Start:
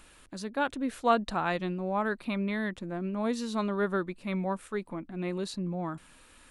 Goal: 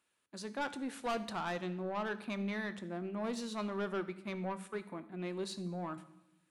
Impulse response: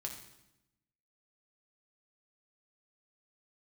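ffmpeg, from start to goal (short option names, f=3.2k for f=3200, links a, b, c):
-filter_complex "[0:a]agate=range=-19dB:threshold=-43dB:ratio=16:detection=peak,highpass=f=75:w=0.5412,highpass=f=75:w=1.3066,lowshelf=f=170:g=-9,asoftclip=type=tanh:threshold=-28dB,asplit=2[a][b];[1:a]atrim=start_sample=2205[c];[b][c]afir=irnorm=-1:irlink=0,volume=-2dB[d];[a][d]amix=inputs=2:normalize=0,volume=-7dB"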